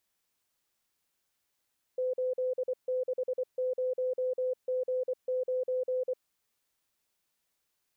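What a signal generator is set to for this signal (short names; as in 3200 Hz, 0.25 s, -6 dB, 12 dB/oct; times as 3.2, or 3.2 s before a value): Morse "860G9" 24 wpm 509 Hz -27.5 dBFS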